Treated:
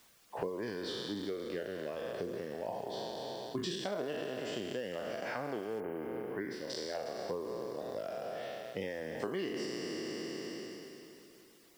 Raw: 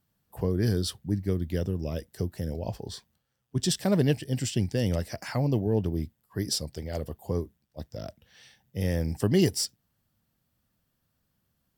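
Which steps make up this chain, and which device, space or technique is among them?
spectral trails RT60 2.90 s; baby monitor (BPF 360–3000 Hz; compressor 6:1, threshold -40 dBFS, peak gain reduction 19 dB; white noise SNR 24 dB); 5.8–6.7 band shelf 5300 Hz -13 dB; reverb removal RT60 0.67 s; high shelf 8800 Hz -4.5 dB; gain +6 dB

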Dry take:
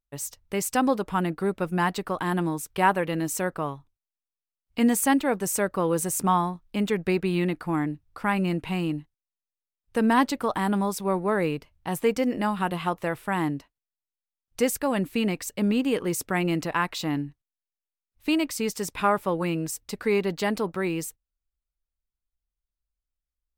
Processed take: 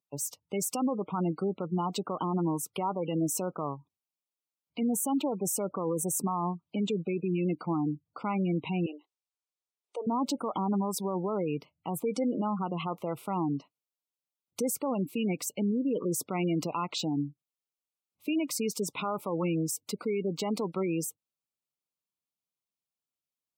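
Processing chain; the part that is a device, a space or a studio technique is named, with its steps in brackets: PA system with an anti-feedback notch (HPF 130 Hz 24 dB/oct; Butterworth band-stop 1700 Hz, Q 2.2; limiter -21.5 dBFS, peak gain reduction 11 dB); 8.86–10.07 Chebyshev band-pass 380–9200 Hz, order 4; spectral gate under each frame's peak -20 dB strong

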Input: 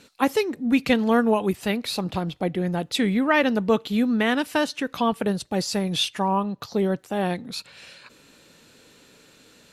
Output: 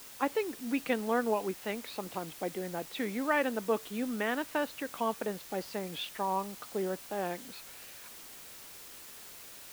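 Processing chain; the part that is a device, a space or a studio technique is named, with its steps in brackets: wax cylinder (BPF 300–2500 Hz; wow and flutter; white noise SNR 14 dB); gain -8 dB

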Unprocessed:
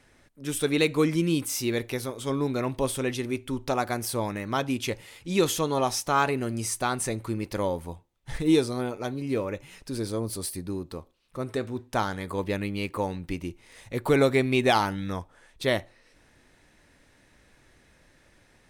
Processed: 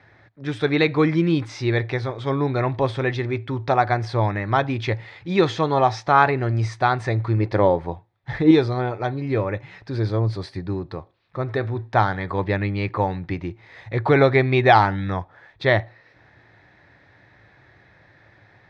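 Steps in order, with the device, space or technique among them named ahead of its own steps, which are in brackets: guitar cabinet (speaker cabinet 83–3900 Hz, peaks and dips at 110 Hz +10 dB, 240 Hz -9 dB, 480 Hz -3 dB, 760 Hz +5 dB, 1800 Hz +5 dB, 2900 Hz -10 dB); 7.39–8.51 dynamic EQ 420 Hz, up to +6 dB, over -41 dBFS, Q 0.7; gain +6.5 dB

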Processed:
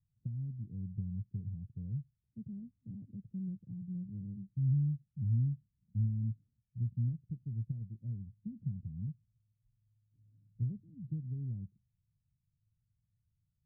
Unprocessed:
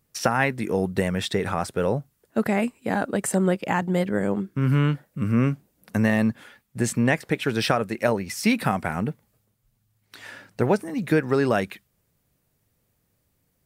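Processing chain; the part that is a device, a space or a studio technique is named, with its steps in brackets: the neighbour's flat through the wall (LPF 150 Hz 24 dB/oct; bell 110 Hz +5 dB 0.46 oct); gain -8 dB

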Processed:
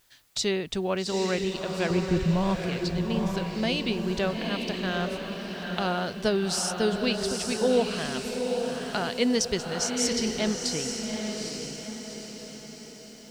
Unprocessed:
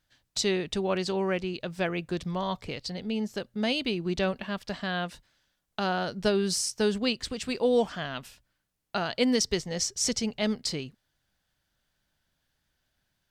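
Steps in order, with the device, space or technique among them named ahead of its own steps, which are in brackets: 1.9–2.62 RIAA curve playback; noise-reduction cassette on a plain deck (mismatched tape noise reduction encoder only; wow and flutter; white noise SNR 36 dB); diffused feedback echo 0.831 s, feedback 49%, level -4 dB

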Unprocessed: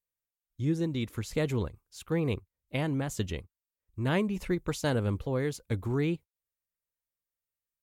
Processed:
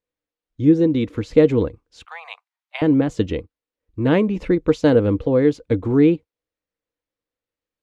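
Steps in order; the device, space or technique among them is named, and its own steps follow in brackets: inside a cardboard box (LPF 4000 Hz 12 dB/oct; small resonant body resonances 300/470 Hz, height 13 dB, ringing for 45 ms); 2.05–2.82 steep high-pass 700 Hz 72 dB/oct; gain +6.5 dB

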